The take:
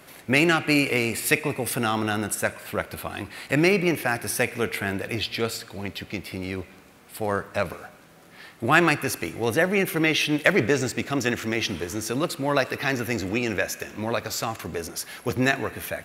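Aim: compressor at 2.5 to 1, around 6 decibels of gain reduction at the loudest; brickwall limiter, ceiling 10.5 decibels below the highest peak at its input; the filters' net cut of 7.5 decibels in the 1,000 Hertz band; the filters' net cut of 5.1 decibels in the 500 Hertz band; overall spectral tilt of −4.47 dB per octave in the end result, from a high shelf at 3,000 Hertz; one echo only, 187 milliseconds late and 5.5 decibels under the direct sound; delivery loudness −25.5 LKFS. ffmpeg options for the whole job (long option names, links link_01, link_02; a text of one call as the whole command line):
ffmpeg -i in.wav -af "equalizer=frequency=500:width_type=o:gain=-4.5,equalizer=frequency=1000:width_type=o:gain=-8.5,highshelf=frequency=3000:gain=-5.5,acompressor=threshold=-27dB:ratio=2.5,alimiter=limit=-21.5dB:level=0:latency=1,aecho=1:1:187:0.531,volume=7dB" out.wav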